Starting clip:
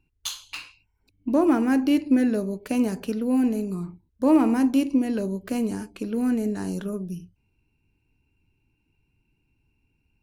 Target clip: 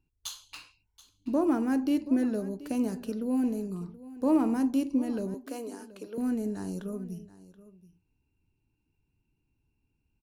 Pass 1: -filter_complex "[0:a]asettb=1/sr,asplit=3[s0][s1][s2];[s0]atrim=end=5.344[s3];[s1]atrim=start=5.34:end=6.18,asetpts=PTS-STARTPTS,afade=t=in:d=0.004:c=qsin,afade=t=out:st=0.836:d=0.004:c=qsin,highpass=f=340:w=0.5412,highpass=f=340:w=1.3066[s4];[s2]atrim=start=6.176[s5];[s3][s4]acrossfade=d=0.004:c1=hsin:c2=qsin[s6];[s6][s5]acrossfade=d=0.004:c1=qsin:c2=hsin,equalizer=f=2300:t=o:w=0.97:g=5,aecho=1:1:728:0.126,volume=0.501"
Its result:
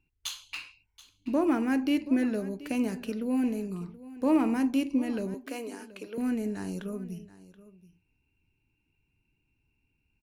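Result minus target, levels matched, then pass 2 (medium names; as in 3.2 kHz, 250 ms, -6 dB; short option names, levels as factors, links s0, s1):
2 kHz band +7.0 dB
-filter_complex "[0:a]asettb=1/sr,asplit=3[s0][s1][s2];[s0]atrim=end=5.344[s3];[s1]atrim=start=5.34:end=6.18,asetpts=PTS-STARTPTS,afade=t=in:d=0.004:c=qsin,afade=t=out:st=0.836:d=0.004:c=qsin,highpass=f=340:w=0.5412,highpass=f=340:w=1.3066[s4];[s2]atrim=start=6.176[s5];[s3][s4]acrossfade=d=0.004:c1=hsin:c2=qsin[s6];[s6][s5]acrossfade=d=0.004:c1=qsin:c2=hsin,equalizer=f=2300:t=o:w=0.97:g=-6,aecho=1:1:728:0.126,volume=0.501"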